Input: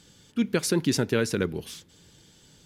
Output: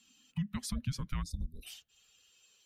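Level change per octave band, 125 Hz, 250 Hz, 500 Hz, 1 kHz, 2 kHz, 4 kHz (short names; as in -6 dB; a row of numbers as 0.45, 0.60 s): -6.0, -14.5, -33.5, -11.0, -19.0, -12.5 dB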